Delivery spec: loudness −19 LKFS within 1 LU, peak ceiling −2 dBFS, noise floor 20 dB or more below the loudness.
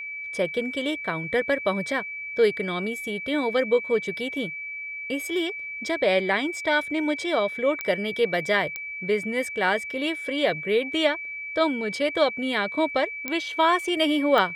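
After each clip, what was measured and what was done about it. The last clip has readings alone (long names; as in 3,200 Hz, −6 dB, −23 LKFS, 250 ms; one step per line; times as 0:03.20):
number of clicks 4; interfering tone 2,300 Hz; level of the tone −32 dBFS; integrated loudness −25.0 LKFS; sample peak −7.5 dBFS; target loudness −19.0 LKFS
→ click removal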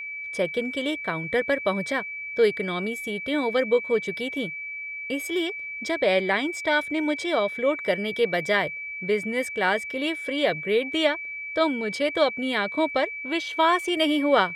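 number of clicks 1; interfering tone 2,300 Hz; level of the tone −32 dBFS
→ notch filter 2,300 Hz, Q 30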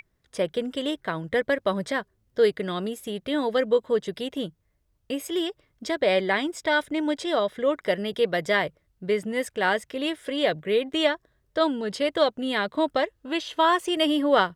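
interfering tone none found; integrated loudness −26.0 LKFS; sample peak −7.5 dBFS; target loudness −19.0 LKFS
→ level +7 dB
brickwall limiter −2 dBFS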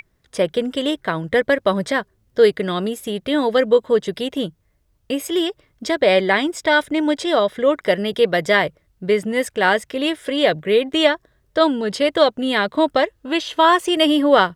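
integrated loudness −19.0 LKFS; sample peak −2.0 dBFS; background noise floor −64 dBFS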